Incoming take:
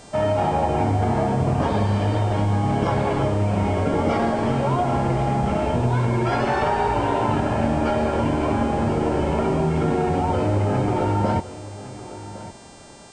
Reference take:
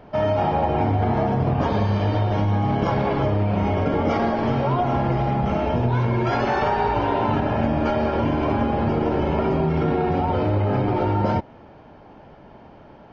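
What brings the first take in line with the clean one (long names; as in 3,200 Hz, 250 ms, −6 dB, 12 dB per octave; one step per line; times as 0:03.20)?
hum removal 395.9 Hz, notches 23
echo removal 1,109 ms −15.5 dB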